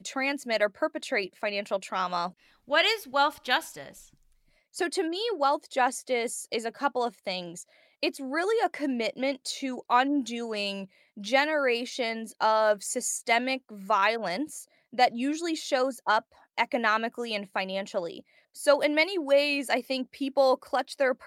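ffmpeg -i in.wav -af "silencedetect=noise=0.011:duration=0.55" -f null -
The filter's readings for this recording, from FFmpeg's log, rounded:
silence_start: 3.91
silence_end: 4.76 | silence_duration: 0.85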